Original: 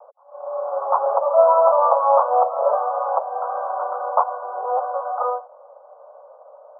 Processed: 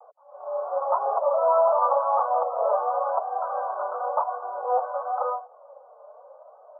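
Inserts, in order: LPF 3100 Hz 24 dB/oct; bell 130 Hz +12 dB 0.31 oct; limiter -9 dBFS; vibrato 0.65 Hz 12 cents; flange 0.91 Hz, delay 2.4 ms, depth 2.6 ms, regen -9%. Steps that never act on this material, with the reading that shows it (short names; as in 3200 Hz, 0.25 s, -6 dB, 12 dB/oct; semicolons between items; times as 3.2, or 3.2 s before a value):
LPF 3100 Hz: input band ends at 1500 Hz; bell 130 Hz: input band starts at 430 Hz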